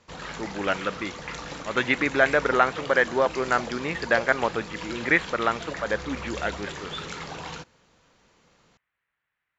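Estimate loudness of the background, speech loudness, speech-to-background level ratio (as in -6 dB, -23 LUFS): -36.0 LUFS, -25.0 LUFS, 11.0 dB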